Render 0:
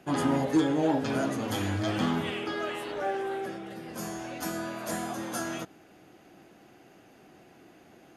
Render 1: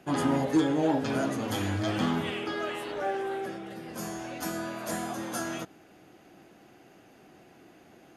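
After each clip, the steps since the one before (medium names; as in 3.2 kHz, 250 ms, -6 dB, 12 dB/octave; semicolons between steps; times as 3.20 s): no audible change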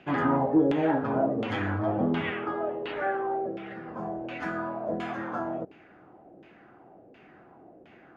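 LFO low-pass saw down 1.4 Hz 460–2900 Hz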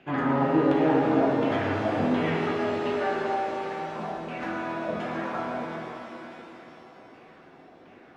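de-hum 61.61 Hz, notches 3; pitch-shifted reverb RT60 3.4 s, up +7 st, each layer -8 dB, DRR -1 dB; trim -2 dB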